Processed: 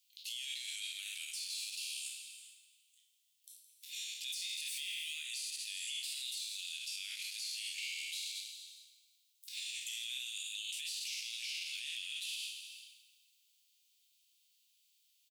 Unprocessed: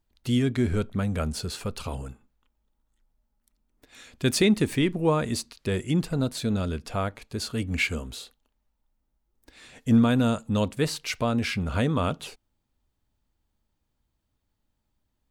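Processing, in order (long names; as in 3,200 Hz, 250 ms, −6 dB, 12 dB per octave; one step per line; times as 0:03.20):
peak hold with a decay on every bin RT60 0.59 s
Butterworth high-pass 2,600 Hz 48 dB per octave
speech leveller within 3 dB 0.5 s
brickwall limiter −42 dBFS, peak gain reduction 28 dB
repeating echo 166 ms, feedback 51%, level −14 dB
reverb whose tail is shaped and stops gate 450 ms flat, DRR 7 dB
level +9 dB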